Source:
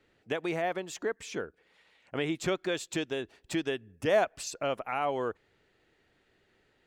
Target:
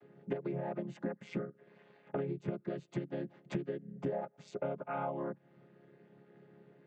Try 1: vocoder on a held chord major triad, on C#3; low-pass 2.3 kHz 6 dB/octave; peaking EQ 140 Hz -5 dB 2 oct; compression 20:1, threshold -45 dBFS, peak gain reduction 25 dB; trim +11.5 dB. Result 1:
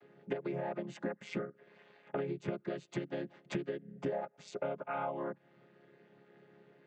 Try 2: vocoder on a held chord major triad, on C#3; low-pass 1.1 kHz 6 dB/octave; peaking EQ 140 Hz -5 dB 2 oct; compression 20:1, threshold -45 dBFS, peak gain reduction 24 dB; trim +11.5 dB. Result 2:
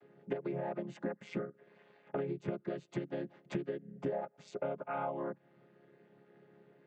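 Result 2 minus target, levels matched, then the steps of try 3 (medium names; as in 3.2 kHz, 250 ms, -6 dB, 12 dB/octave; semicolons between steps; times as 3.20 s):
125 Hz band -2.5 dB
vocoder on a held chord major triad, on C#3; low-pass 1.1 kHz 6 dB/octave; compression 20:1, threshold -45 dBFS, peak gain reduction 24.5 dB; trim +11.5 dB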